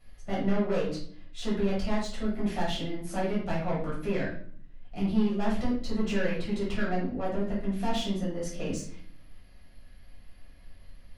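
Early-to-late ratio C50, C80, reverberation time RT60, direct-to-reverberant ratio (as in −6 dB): 3.5 dB, 9.5 dB, 0.55 s, −8.0 dB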